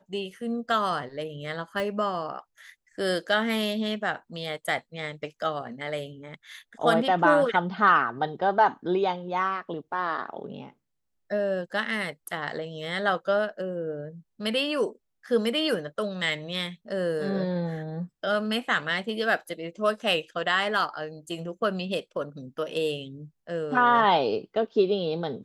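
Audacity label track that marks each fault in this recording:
1.800000	1.800000	pop -19 dBFS

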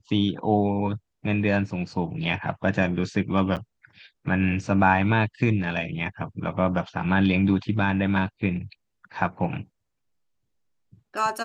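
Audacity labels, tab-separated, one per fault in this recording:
3.560000	3.570000	gap 7.7 ms

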